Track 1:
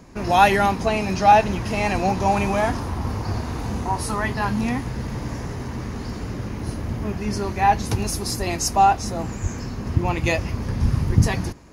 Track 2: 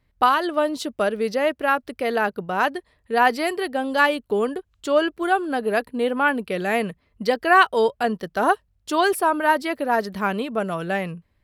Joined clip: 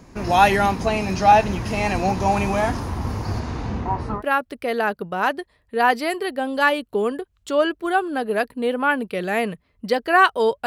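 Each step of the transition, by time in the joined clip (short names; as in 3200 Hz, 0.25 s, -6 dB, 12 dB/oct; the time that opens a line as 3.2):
track 1
3.39–4.23 LPF 8200 Hz -> 1300 Hz
4.19 switch to track 2 from 1.56 s, crossfade 0.08 s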